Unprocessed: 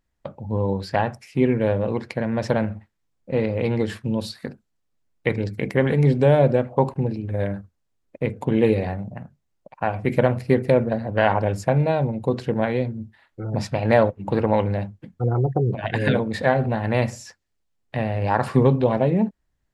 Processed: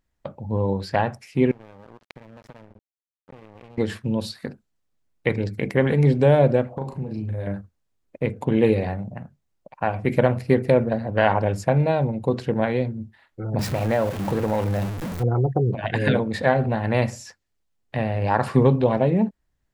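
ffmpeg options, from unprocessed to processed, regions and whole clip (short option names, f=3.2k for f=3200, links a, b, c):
-filter_complex "[0:a]asettb=1/sr,asplit=3[a][b][c];[a]atrim=end=1.514[d];[b]atrim=start=1.51:end=3.78,asetpts=PTS-STARTPTS,afade=t=in:d=0.004:c=qsin,afade=t=out:st=2.266:d=0.004:c=qsin,highshelf=f=3.5k:g=-7,acompressor=threshold=-35dB:ratio=10:attack=3.2:release=140:knee=1:detection=peak,aeval=exprs='sgn(val(0))*max(abs(val(0))-0.0106,0)':c=same[e];[c]atrim=start=3.776[f];[d][e]acrossfade=d=0.004:c1=hsin:c2=qsin[g];[g][f]acrossfade=d=0.004:c1=qsin:c2=hsin,asettb=1/sr,asplit=3[h][i][j];[h]atrim=end=6.774[k];[i]atrim=start=6.77:end=7.47,asetpts=PTS-STARTPTS,afade=t=in:d=0.004:c=qsin,afade=t=out:st=0.696:d=0.004:c=qsin,bass=f=250:g=4,treble=f=4k:g=4,acompressor=threshold=-27dB:ratio=5:attack=3.2:release=140:knee=1:detection=peak,asplit=2[l][m];[m]adelay=37,volume=-5dB[n];[l][n]amix=inputs=2:normalize=0,atrim=end_sample=30870[o];[j]atrim=start=7.466[p];[k][o]acrossfade=d=0.004:c1=hsin:c2=qsin[q];[q][p]acrossfade=d=0.004:c1=qsin:c2=hsin,asettb=1/sr,asplit=3[r][s][t];[r]atrim=end=13.594[u];[s]atrim=start=13.59:end=15.23,asetpts=PTS-STARTPTS,afade=t=in:d=0.004:c=qsin,afade=t=out:st=1.636:d=0.004:c=qsin,aeval=exprs='val(0)+0.5*0.0596*sgn(val(0))':c=same,equalizer=f=5.1k:w=0.56:g=-3.5,acompressor=threshold=-21dB:ratio=2:attack=3.2:release=140:knee=1:detection=peak[v];[t]atrim=start=15.226[w];[u][v]acrossfade=d=0.004:c1=hsin:c2=qsin[x];[x][w]acrossfade=d=0.004:c1=qsin:c2=hsin"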